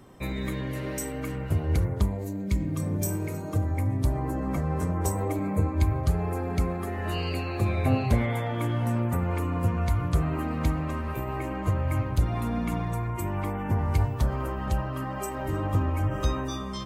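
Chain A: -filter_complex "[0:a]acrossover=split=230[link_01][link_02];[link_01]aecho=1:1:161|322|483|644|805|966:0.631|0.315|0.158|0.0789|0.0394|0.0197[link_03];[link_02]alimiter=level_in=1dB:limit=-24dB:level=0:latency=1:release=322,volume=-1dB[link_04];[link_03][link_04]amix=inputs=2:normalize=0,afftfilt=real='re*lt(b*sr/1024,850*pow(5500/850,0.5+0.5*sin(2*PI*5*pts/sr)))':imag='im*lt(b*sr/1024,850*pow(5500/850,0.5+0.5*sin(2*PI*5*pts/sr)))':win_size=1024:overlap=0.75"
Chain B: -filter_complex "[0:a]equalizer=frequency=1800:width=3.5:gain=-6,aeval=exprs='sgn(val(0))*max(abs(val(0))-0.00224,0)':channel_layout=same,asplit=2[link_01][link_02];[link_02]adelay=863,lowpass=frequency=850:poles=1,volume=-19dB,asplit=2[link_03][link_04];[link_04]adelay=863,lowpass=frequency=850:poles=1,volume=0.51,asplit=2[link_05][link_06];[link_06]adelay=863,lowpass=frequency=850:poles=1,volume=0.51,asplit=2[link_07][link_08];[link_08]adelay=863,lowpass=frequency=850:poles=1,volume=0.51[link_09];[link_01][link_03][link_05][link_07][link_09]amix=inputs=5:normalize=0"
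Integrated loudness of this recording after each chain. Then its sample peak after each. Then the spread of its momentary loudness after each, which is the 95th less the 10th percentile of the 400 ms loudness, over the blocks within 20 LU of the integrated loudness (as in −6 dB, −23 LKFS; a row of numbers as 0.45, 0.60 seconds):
−27.5, −29.0 LKFS; −11.5, −10.5 dBFS; 7, 7 LU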